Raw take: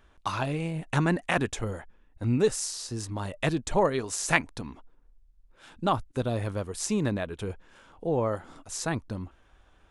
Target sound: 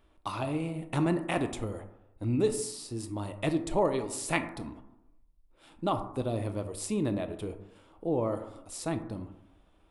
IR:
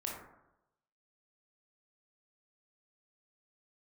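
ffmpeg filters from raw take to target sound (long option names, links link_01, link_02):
-filter_complex "[0:a]equalizer=frequency=315:width_type=o:width=0.33:gain=8,equalizer=frequency=630:width_type=o:width=0.33:gain=3,equalizer=frequency=1600:width_type=o:width=0.33:gain=-9,equalizer=frequency=6300:width_type=o:width=0.33:gain=-8,equalizer=frequency=10000:width_type=o:width=0.33:gain=5,asplit=2[link_01][link_02];[1:a]atrim=start_sample=2205[link_03];[link_02][link_03]afir=irnorm=-1:irlink=0,volume=-5dB[link_04];[link_01][link_04]amix=inputs=2:normalize=0,volume=-7.5dB"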